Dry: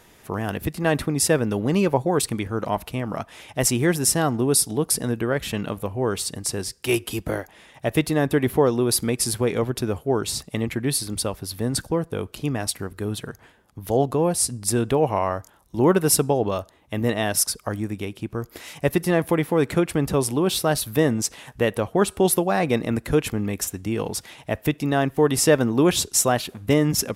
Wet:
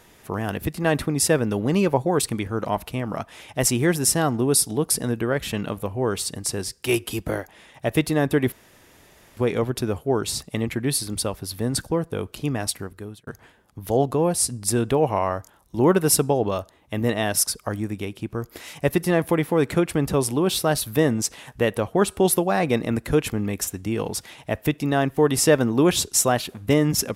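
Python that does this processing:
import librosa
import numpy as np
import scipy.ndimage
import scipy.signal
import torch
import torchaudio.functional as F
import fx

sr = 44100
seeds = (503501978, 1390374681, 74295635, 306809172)

y = fx.edit(x, sr, fx.room_tone_fill(start_s=8.52, length_s=0.85),
    fx.fade_out_span(start_s=12.71, length_s=0.56), tone=tone)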